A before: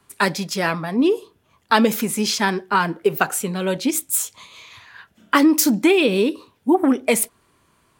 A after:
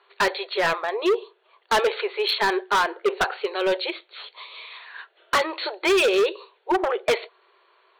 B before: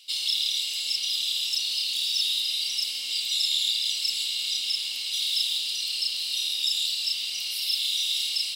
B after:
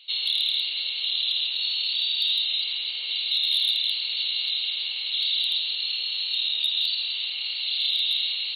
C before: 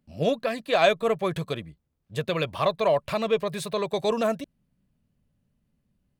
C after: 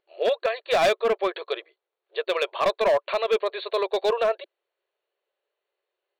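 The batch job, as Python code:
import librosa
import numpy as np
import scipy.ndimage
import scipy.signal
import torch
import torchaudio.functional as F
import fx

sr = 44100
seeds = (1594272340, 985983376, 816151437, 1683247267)

y = fx.brickwall_bandpass(x, sr, low_hz=350.0, high_hz=4500.0)
y = np.clip(10.0 ** (19.0 / 20.0) * y, -1.0, 1.0) / 10.0 ** (19.0 / 20.0)
y = F.gain(torch.from_numpy(y), 3.0).numpy()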